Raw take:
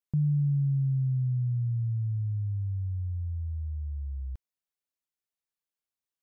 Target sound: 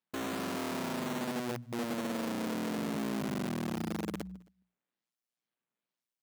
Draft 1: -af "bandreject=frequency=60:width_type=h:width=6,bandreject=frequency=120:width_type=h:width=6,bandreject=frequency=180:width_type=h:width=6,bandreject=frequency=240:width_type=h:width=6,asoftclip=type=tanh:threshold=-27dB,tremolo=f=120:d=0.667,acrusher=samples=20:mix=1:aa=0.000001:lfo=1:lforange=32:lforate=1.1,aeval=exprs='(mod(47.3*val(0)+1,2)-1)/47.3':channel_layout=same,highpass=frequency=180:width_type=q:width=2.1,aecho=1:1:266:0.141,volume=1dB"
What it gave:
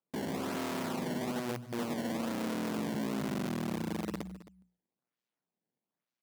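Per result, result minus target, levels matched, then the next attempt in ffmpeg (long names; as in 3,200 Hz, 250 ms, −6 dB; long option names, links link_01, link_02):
sample-and-hold swept by an LFO: distortion +13 dB; echo-to-direct +11.5 dB
-af "bandreject=frequency=60:width_type=h:width=6,bandreject=frequency=120:width_type=h:width=6,bandreject=frequency=180:width_type=h:width=6,bandreject=frequency=240:width_type=h:width=6,asoftclip=type=tanh:threshold=-27dB,tremolo=f=120:d=0.667,acrusher=samples=5:mix=1:aa=0.000001:lfo=1:lforange=8:lforate=1.1,aeval=exprs='(mod(47.3*val(0)+1,2)-1)/47.3':channel_layout=same,highpass=frequency=180:width_type=q:width=2.1,aecho=1:1:266:0.141,volume=1dB"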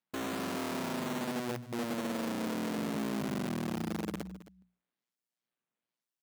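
echo-to-direct +11.5 dB
-af "bandreject=frequency=60:width_type=h:width=6,bandreject=frequency=120:width_type=h:width=6,bandreject=frequency=180:width_type=h:width=6,bandreject=frequency=240:width_type=h:width=6,asoftclip=type=tanh:threshold=-27dB,tremolo=f=120:d=0.667,acrusher=samples=5:mix=1:aa=0.000001:lfo=1:lforange=8:lforate=1.1,aeval=exprs='(mod(47.3*val(0)+1,2)-1)/47.3':channel_layout=same,highpass=frequency=180:width_type=q:width=2.1,aecho=1:1:266:0.0376,volume=1dB"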